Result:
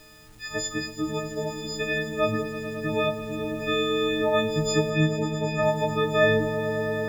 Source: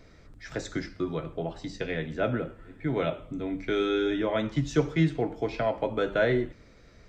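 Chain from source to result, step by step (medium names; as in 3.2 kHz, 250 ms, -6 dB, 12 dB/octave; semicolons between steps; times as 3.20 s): partials quantised in pitch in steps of 6 st; bit crusher 9-bit; 4.90–5.63 s: low-pass 3.2 kHz 12 dB/octave; echo with a slow build-up 109 ms, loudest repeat 5, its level -14.5 dB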